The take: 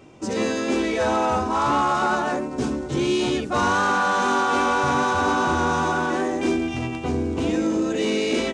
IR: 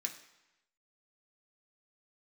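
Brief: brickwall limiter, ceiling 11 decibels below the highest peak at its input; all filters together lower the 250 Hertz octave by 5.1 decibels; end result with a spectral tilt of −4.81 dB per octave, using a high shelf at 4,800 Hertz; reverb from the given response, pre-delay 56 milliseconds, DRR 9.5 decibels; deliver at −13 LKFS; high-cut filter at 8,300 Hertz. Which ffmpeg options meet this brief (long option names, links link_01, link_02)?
-filter_complex "[0:a]lowpass=8300,equalizer=frequency=250:width_type=o:gain=-7,highshelf=frequency=4800:gain=-4.5,alimiter=limit=-22dB:level=0:latency=1,asplit=2[link_01][link_02];[1:a]atrim=start_sample=2205,adelay=56[link_03];[link_02][link_03]afir=irnorm=-1:irlink=0,volume=-9dB[link_04];[link_01][link_04]amix=inputs=2:normalize=0,volume=16.5dB"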